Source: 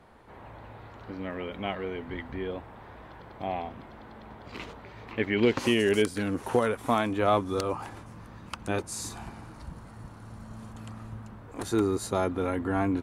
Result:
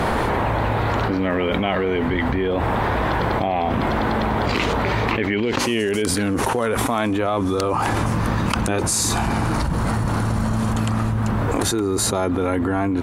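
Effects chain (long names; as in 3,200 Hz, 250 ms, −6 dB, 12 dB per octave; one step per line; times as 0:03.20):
envelope flattener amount 100%
level −1.5 dB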